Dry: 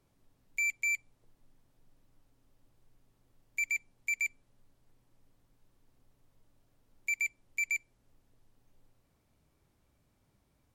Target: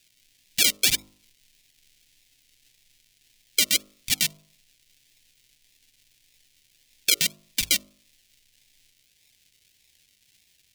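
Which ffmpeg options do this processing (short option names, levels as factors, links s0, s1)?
-af "acrusher=samples=41:mix=1:aa=0.000001:lfo=1:lforange=24.6:lforate=1.7,bandreject=f=51.21:t=h:w=4,bandreject=f=102.42:t=h:w=4,bandreject=f=153.63:t=h:w=4,bandreject=f=204.84:t=h:w=4,bandreject=f=256.05:t=h:w=4,bandreject=f=307.26:t=h:w=4,bandreject=f=358.47:t=h:w=4,bandreject=f=409.68:t=h:w=4,bandreject=f=460.89:t=h:w=4,bandreject=f=512.1:t=h:w=4,bandreject=f=563.31:t=h:w=4,bandreject=f=614.52:t=h:w=4,bandreject=f=665.73:t=h:w=4,bandreject=f=716.94:t=h:w=4,bandreject=f=768.15:t=h:w=4,bandreject=f=819.36:t=h:w=4,bandreject=f=870.57:t=h:w=4,bandreject=f=921.78:t=h:w=4,bandreject=f=972.99:t=h:w=4,bandreject=f=1024.2:t=h:w=4,bandreject=f=1075.41:t=h:w=4,bandreject=f=1126.62:t=h:w=4,bandreject=f=1177.83:t=h:w=4,bandreject=f=1229.04:t=h:w=4,bandreject=f=1280.25:t=h:w=4,bandreject=f=1331.46:t=h:w=4,bandreject=f=1382.67:t=h:w=4,aexciter=amount=14.7:drive=9:freq=2000,volume=0.501"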